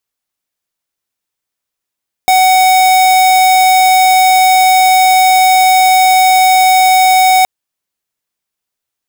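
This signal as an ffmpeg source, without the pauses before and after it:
-f lavfi -i "aevalsrc='0.422*(2*lt(mod(748*t,1),0.5)-1)':d=5.17:s=44100"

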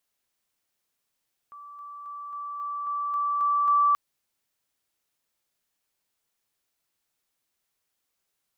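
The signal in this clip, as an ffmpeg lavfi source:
-f lavfi -i "aevalsrc='pow(10,(-41.5+3*floor(t/0.27))/20)*sin(2*PI*1160*t)':d=2.43:s=44100"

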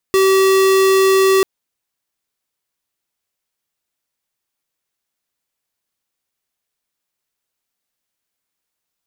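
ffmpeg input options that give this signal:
-f lavfi -i "aevalsrc='0.251*(2*lt(mod(384*t,1),0.5)-1)':d=1.29:s=44100"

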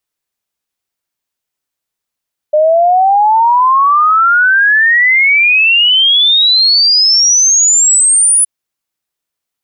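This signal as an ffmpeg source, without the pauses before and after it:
-f lavfi -i "aevalsrc='0.531*clip(min(t,5.92-t)/0.01,0,1)*sin(2*PI*600*5.92/log(10000/600)*(exp(log(10000/600)*t/5.92)-1))':d=5.92:s=44100"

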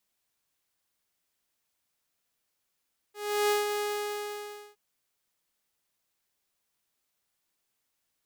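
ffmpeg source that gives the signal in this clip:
-f lavfi -i "aevalsrc='0.1*(2*mod(415*t,1)-1)':d=1.617:s=44100,afade=t=in:d=0.346,afade=t=out:st=0.346:d=0.165:silence=0.501,afade=t=out:st=0.66:d=0.957"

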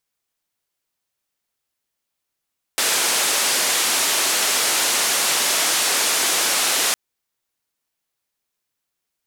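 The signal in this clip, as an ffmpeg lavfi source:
-f lavfi -i "anoisesrc=c=white:d=4.16:r=44100:seed=1,highpass=f=330,lowpass=f=10000,volume=-11.2dB"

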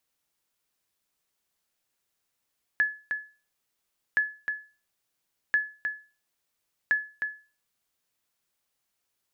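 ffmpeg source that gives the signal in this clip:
-f lavfi -i "aevalsrc='0.158*(sin(2*PI*1710*mod(t,1.37))*exp(-6.91*mod(t,1.37)/0.34)+0.473*sin(2*PI*1710*max(mod(t,1.37)-0.31,0))*exp(-6.91*max(mod(t,1.37)-0.31,0)/0.34))':d=5.48:s=44100"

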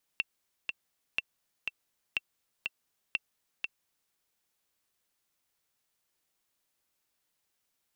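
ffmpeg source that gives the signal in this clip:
-f lavfi -i "aevalsrc='pow(10,(-15.5-4*gte(mod(t,2*60/122),60/122))/20)*sin(2*PI*2700*mod(t,60/122))*exp(-6.91*mod(t,60/122)/0.03)':d=3.93:s=44100"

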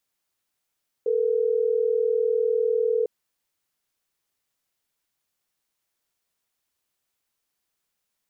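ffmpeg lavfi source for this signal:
-f lavfi -i "aevalsrc='0.075*(sin(2*PI*440*t)+sin(2*PI*480*t))*clip(min(mod(t,6),2-mod(t,6))/0.005,0,1)':d=3.12:s=44100"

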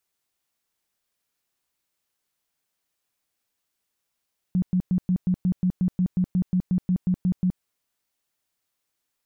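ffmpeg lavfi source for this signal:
-f lavfi -i "aevalsrc='0.126*sin(2*PI*182*mod(t,0.18))*lt(mod(t,0.18),13/182)':d=3.06:s=44100"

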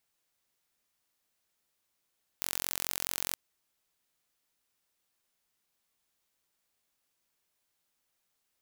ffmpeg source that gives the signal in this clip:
-f lavfi -i "aevalsrc='0.531*eq(mod(n,987),0)':d=0.92:s=44100"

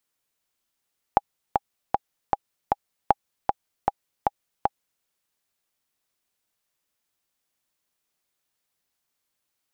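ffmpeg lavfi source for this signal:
-f lavfi -i "aevalsrc='pow(10,(-2.5-4*gte(mod(t,5*60/155),60/155))/20)*sin(2*PI*811*mod(t,60/155))*exp(-6.91*mod(t,60/155)/0.03)':d=3.87:s=44100"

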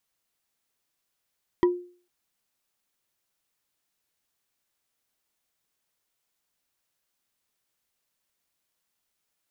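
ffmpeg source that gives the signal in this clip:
-f lavfi -i "aevalsrc='0.2*pow(10,-3*t/0.43)*sin(2*PI*355*t)+0.0841*pow(10,-3*t/0.127)*sin(2*PI*978.7*t)+0.0355*pow(10,-3*t/0.057)*sin(2*PI*1918.4*t)+0.015*pow(10,-3*t/0.031)*sin(2*PI*3171.2*t)+0.00631*pow(10,-3*t/0.019)*sin(2*PI*4735.7*t)':d=0.45:s=44100"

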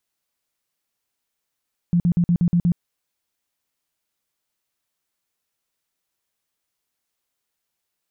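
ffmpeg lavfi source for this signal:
-f lavfi -i "aevalsrc='0.2*sin(2*PI*173*mod(t,0.12))*lt(mod(t,0.12),12/173)':d=0.84:s=44100"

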